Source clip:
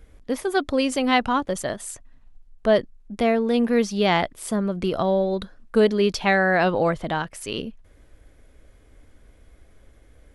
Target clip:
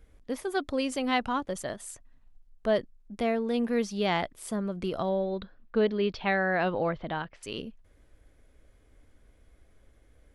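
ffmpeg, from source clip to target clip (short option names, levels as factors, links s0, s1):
-filter_complex "[0:a]asettb=1/sr,asplit=3[s0][s1][s2];[s0]atrim=end=5.094[s3];[s1]atrim=start=5.09:end=7.43,asetpts=PTS-STARTPTS,afade=t=in:d=0.004:c=qsin,afade=t=out:st=2.336:d=0.004:c=qsin,lowpass=f=4100:w=0.5412,lowpass=f=4100:w=1.3066[s4];[s2]atrim=start=7.426[s5];[s3][s4]acrossfade=d=0.004:c1=hsin:c2=qsin[s6];[s6][s5]acrossfade=d=0.004:c1=qsin:c2=hsin,volume=0.422"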